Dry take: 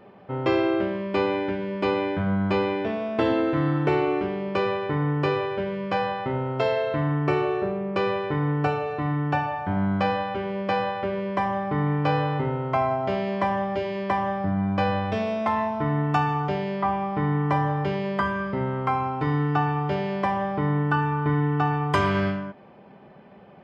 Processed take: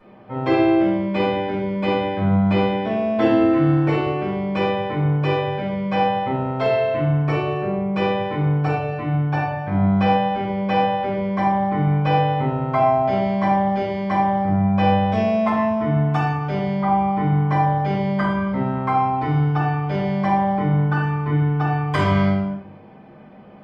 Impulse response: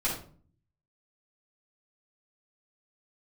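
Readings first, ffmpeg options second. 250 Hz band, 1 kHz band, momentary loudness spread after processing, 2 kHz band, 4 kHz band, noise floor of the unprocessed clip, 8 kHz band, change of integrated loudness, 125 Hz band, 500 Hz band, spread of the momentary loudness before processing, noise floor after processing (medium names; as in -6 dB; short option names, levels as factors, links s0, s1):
+6.0 dB, +5.0 dB, 5 LU, +1.5 dB, +3.5 dB, -48 dBFS, no reading, +5.0 dB, +6.0 dB, +3.5 dB, 4 LU, -41 dBFS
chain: -filter_complex "[1:a]atrim=start_sample=2205,asetrate=43218,aresample=44100[s0];[0:a][s0]afir=irnorm=-1:irlink=0,volume=0.596"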